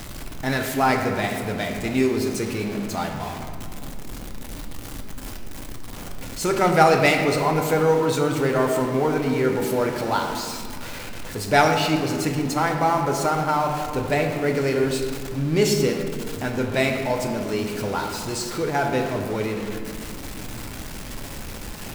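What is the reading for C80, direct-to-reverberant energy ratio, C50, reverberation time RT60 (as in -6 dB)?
6.0 dB, 2.5 dB, 5.0 dB, 2.3 s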